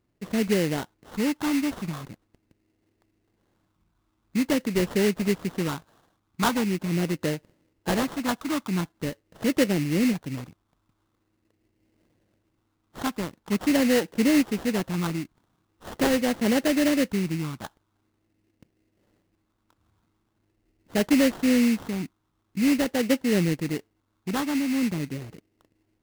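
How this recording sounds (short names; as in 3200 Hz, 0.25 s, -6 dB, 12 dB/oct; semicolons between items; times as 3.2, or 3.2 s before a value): phasing stages 4, 0.44 Hz, lowest notch 520–1200 Hz; aliases and images of a low sample rate 2400 Hz, jitter 20%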